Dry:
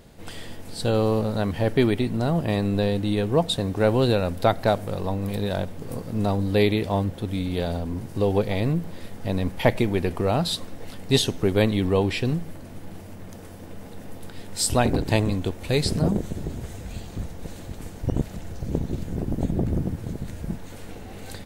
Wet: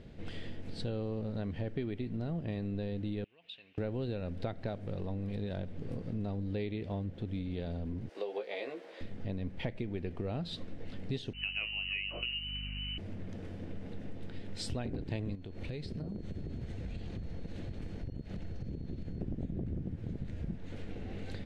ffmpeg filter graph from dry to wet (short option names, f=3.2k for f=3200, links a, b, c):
-filter_complex "[0:a]asettb=1/sr,asplit=3[a][b][c];[a]atrim=end=3.244[d];[b]atrim=start=3.24:end=3.78,asetpts=PTS-STARTPTS,afade=t=in:d=0.004:c=qsin,afade=t=out:st=0.536:d=0.004:c=qsin,acompressor=threshold=-21dB:ratio=10:attack=3.2:release=140:knee=1:detection=peak,bandpass=f=2.7k:t=q:w=6[e];[c]atrim=start=3.776[f];[d][e]acrossfade=d=0.004:c1=hsin:c2=qsin[g];[g][f]acrossfade=d=0.004:c1=qsin:c2=hsin,asettb=1/sr,asplit=3[h][i][j];[h]atrim=end=8.094[k];[i]atrim=start=8.09:end=9.01,asetpts=PTS-STARTPTS,afade=t=in:d=0.004:c=qsin,afade=t=out:st=0.916:d=0.004:c=qsin,highpass=f=470:w=0.5412,highpass=f=470:w=1.3066,asplit=2[l][m];[m]adelay=15,volume=-4.5dB[n];[l][n]amix=inputs=2:normalize=0,atrim=end_sample=40572[o];[j]atrim=start=9.006[p];[k][o]acrossfade=d=0.004:c1=hsin:c2=qsin[q];[q][p]acrossfade=d=0.004:c1=qsin:c2=hsin,asettb=1/sr,asplit=3[r][s][t];[r]atrim=end=11.334[u];[s]atrim=start=11.33:end=12.98,asetpts=PTS-STARTPTS,afade=t=in:d=0.004:c=qsin,afade=t=out:st=1.646:d=0.004:c=qsin,lowpass=f=2.6k:t=q:w=0.5098,lowpass=f=2.6k:t=q:w=0.6013,lowpass=f=2.6k:t=q:w=0.9,lowpass=f=2.6k:t=q:w=2.563,afreqshift=-3000,asplit=2[v][w];[w]adelay=24,volume=-11.5dB[x];[v][x]amix=inputs=2:normalize=0,atrim=end_sample=72765,aeval=exprs='val(0)+0.0126*(sin(2*PI*50*n/s)+sin(2*PI*2*50*n/s)/2+sin(2*PI*3*50*n/s)/3+sin(2*PI*4*50*n/s)/4+sin(2*PI*5*50*n/s)/5)':c=same[y];[t]atrim=start=12.976[z];[u][y]acrossfade=d=0.004:c1=hsin:c2=qsin[aa];[aa][z]acrossfade=d=0.004:c1=qsin:c2=hsin,asettb=1/sr,asplit=3[ab][ac][ad];[ab]atrim=end=15.354[ae];[ac]atrim=start=15.35:end=19.21,asetpts=PTS-STARTPTS,afade=t=in:d=0.004:c=qsin,afade=t=out:st=3.856:d=0.004:c=qsin,bandreject=f=7.3k:w=19,acompressor=threshold=-33dB:ratio=10:attack=3.2:release=140:knee=1:detection=peak,aeval=exprs='val(0)+0.000891*sin(2*PI*4300*n/s)':c=same[af];[ad]atrim=start=19.206[ag];[ae][af]acrossfade=d=0.004:c1=hsin:c2=qsin[ah];[ah][ag]acrossfade=d=0.004:c1=qsin:c2=hsin,lowpass=2.8k,equalizer=f=990:t=o:w=1.4:g=-11,acompressor=threshold=-35dB:ratio=5"